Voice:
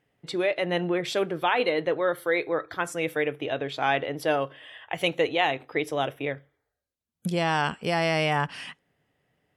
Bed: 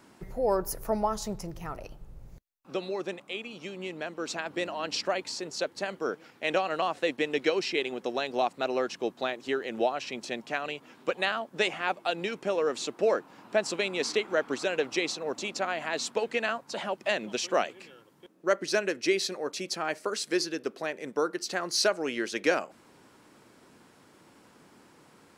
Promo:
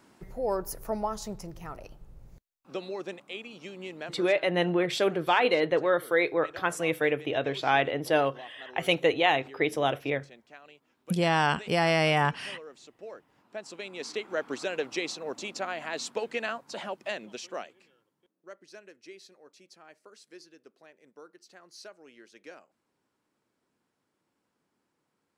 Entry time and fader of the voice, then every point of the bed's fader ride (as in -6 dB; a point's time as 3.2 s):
3.85 s, +0.5 dB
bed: 4.11 s -3 dB
4.36 s -18.5 dB
13.12 s -18.5 dB
14.47 s -3 dB
16.83 s -3 dB
18.57 s -22 dB